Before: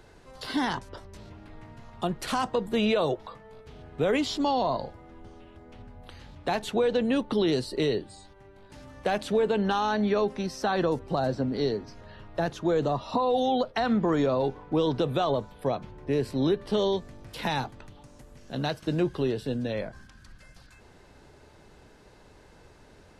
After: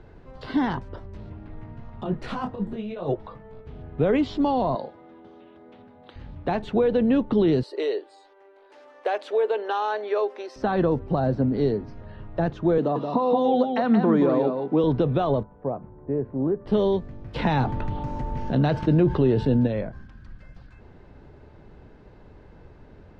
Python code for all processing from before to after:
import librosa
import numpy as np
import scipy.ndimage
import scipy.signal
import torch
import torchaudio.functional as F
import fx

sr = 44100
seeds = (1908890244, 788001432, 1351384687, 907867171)

y = fx.chain(x, sr, fx.over_compress(threshold_db=-28.0, ratio=-0.5),
    fx.detune_double(cents=30), at=(2.03, 3.09))
y = fx.chain(y, sr, fx.highpass(hz=290.0, slope=12),
    fx.peak_eq(hz=3700.0, db=8.0, octaves=0.35), at=(4.75, 6.16))
y = fx.chain(y, sr, fx.cheby2_highpass(hz=200.0, order=4, stop_db=40),
    fx.high_shelf(hz=6900.0, db=9.5), at=(7.63, 10.56))
y = fx.chain(y, sr, fx.highpass(hz=170.0, slope=24),
    fx.echo_single(ms=176, db=-5.5), at=(12.78, 14.84))
y = fx.chain(y, sr, fx.bessel_lowpass(hz=880.0, order=4),
    fx.tilt_eq(slope=2.5), at=(15.43, 16.66))
y = fx.lowpass(y, sr, hz=8900.0, slope=12, at=(17.34, 19.66), fade=0.02)
y = fx.dmg_tone(y, sr, hz=890.0, level_db=-50.0, at=(17.34, 19.66), fade=0.02)
y = fx.env_flatten(y, sr, amount_pct=50, at=(17.34, 19.66), fade=0.02)
y = scipy.signal.sosfilt(scipy.signal.bessel(2, 2300.0, 'lowpass', norm='mag', fs=sr, output='sos'), y)
y = fx.low_shelf(y, sr, hz=390.0, db=8.5)